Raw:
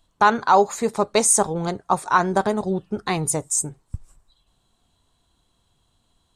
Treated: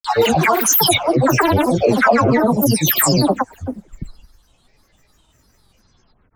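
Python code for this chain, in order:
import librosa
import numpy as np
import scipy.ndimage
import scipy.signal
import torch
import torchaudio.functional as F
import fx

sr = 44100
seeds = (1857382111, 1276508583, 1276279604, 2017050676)

p1 = fx.spec_delay(x, sr, highs='early', ms=596)
p2 = fx.over_compress(p1, sr, threshold_db=-24.0, ratio=-1.0)
p3 = p1 + F.gain(torch.from_numpy(p2), 1.0).numpy()
p4 = fx.granulator(p3, sr, seeds[0], grain_ms=100.0, per_s=20.0, spray_ms=100.0, spread_st=12)
y = F.gain(torch.from_numpy(p4), 4.0).numpy()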